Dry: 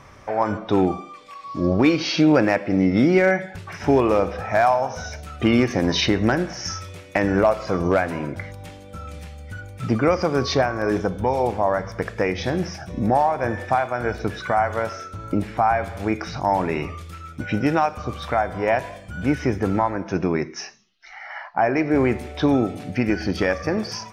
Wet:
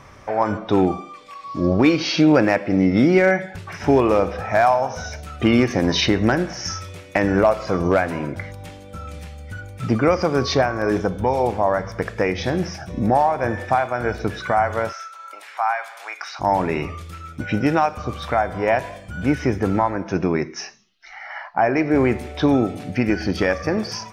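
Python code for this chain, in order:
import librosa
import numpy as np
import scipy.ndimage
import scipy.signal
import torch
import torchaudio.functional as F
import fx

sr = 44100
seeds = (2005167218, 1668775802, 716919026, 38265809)

y = fx.highpass(x, sr, hz=840.0, slope=24, at=(14.91, 16.39), fade=0.02)
y = F.gain(torch.from_numpy(y), 1.5).numpy()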